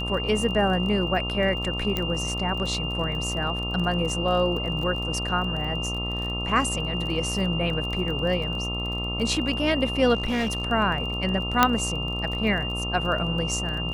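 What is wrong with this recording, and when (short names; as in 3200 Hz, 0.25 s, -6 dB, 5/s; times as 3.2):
buzz 60 Hz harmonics 22 -31 dBFS
crackle 27/s -32 dBFS
tone 2800 Hz -30 dBFS
1.97 pop -12 dBFS
10.14–10.65 clipped -22 dBFS
11.63 pop -2 dBFS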